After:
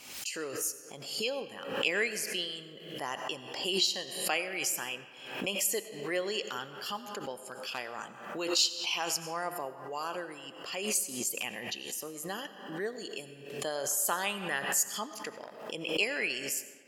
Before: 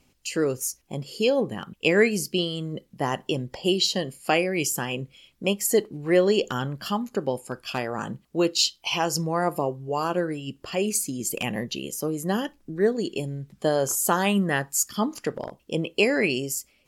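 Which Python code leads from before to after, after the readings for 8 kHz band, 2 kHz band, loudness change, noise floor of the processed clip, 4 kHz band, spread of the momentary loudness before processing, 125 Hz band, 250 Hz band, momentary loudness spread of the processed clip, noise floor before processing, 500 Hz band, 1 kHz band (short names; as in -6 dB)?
-3.5 dB, -5.0 dB, -7.5 dB, -50 dBFS, -3.5 dB, 10 LU, -19.0 dB, -15.5 dB, 13 LU, -65 dBFS, -12.5 dB, -8.5 dB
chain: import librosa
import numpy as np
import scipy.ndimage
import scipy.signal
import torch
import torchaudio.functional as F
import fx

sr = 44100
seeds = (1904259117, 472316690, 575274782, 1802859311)

y = fx.highpass(x, sr, hz=1400.0, slope=6)
y = fx.rev_freeverb(y, sr, rt60_s=1.9, hf_ratio=0.55, predelay_ms=50, drr_db=11.5)
y = fx.pre_swell(y, sr, db_per_s=65.0)
y = F.gain(torch.from_numpy(y), -4.5).numpy()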